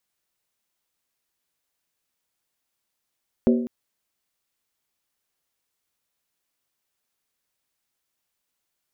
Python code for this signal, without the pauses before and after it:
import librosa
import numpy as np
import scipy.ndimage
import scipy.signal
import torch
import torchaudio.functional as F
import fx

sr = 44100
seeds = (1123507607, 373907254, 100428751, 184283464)

y = fx.strike_skin(sr, length_s=0.2, level_db=-13, hz=239.0, decay_s=0.71, tilt_db=5, modes=5)